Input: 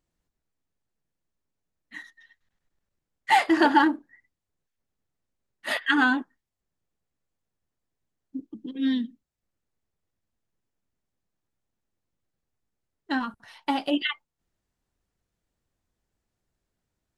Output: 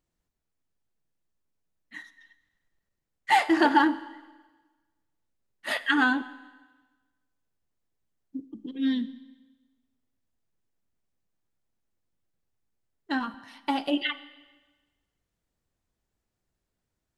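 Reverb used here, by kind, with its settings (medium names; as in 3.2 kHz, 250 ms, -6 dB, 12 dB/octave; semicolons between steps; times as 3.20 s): Schroeder reverb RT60 1.3 s, combs from 33 ms, DRR 15.5 dB; trim -1.5 dB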